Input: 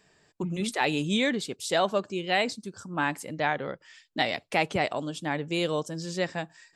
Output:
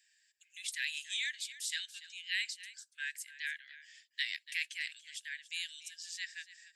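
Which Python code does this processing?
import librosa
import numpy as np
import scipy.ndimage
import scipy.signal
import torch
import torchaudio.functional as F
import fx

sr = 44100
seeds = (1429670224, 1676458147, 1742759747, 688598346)

y = scipy.signal.sosfilt(scipy.signal.cheby1(8, 1.0, 1600.0, 'highpass', fs=sr, output='sos'), x)
y = fx.high_shelf(y, sr, hz=4200.0, db=6.5)
y = y + 10.0 ** (-16.0 / 20.0) * np.pad(y, (int(286 * sr / 1000.0), 0))[:len(y)]
y = F.gain(torch.from_numpy(y), -7.5).numpy()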